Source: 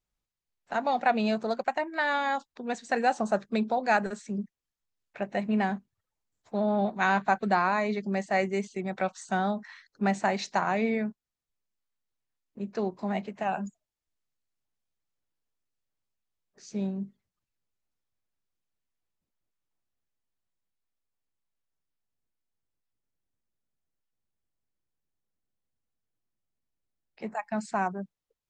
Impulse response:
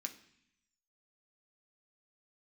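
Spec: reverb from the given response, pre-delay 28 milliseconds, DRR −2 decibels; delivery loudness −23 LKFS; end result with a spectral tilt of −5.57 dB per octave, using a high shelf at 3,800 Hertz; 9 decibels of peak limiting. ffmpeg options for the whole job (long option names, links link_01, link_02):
-filter_complex "[0:a]highshelf=frequency=3800:gain=-7,alimiter=limit=-21.5dB:level=0:latency=1,asplit=2[link_01][link_02];[1:a]atrim=start_sample=2205,adelay=28[link_03];[link_02][link_03]afir=irnorm=-1:irlink=0,volume=4.5dB[link_04];[link_01][link_04]amix=inputs=2:normalize=0,volume=6dB"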